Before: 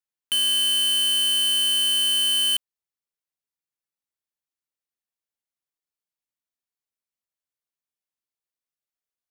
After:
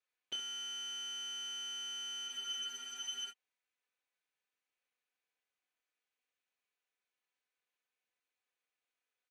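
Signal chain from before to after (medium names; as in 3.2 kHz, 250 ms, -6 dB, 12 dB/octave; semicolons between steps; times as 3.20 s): comb filter that takes the minimum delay 4 ms; integer overflow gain 32 dB; valve stage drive 43 dB, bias 0.65; cabinet simulation 370–7600 Hz, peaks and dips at 400 Hz +6 dB, 1.6 kHz +4 dB, 2.4 kHz +7 dB, 5.2 kHz -9 dB, 7.6 kHz -7 dB; on a send: early reflections 28 ms -8 dB, 70 ms -11.5 dB; on the sum: spectral freeze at 2.30 s, 1.02 s; trim +7.5 dB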